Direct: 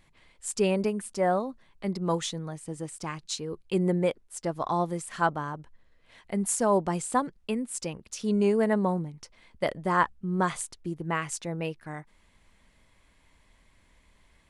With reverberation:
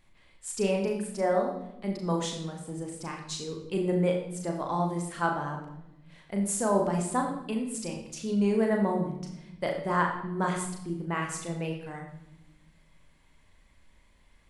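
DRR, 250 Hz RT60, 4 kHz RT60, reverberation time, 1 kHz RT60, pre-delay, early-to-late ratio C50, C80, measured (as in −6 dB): 1.0 dB, 1.6 s, 0.70 s, 0.95 s, 0.80 s, 36 ms, 6.0 dB, 8.0 dB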